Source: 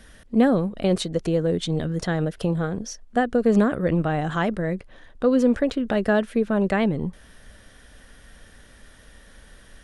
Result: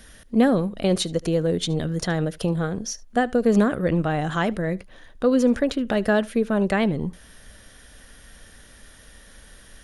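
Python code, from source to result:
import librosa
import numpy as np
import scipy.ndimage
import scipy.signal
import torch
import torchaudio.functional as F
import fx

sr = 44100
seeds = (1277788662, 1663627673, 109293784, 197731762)

y = fx.high_shelf(x, sr, hz=4500.0, db=8.0)
y = fx.notch(y, sr, hz=7900.0, q=11.0)
y = y + 10.0 ** (-23.5 / 20.0) * np.pad(y, (int(74 * sr / 1000.0), 0))[:len(y)]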